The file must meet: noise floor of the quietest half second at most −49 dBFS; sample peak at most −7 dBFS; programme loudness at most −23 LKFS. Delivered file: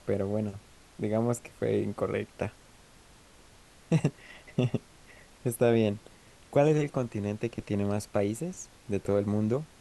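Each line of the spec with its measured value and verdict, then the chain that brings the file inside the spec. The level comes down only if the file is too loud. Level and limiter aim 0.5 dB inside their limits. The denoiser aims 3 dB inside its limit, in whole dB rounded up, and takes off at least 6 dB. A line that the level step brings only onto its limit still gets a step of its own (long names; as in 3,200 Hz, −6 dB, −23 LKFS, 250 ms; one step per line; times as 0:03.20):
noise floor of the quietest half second −56 dBFS: in spec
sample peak −11.5 dBFS: in spec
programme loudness −30.5 LKFS: in spec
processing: no processing needed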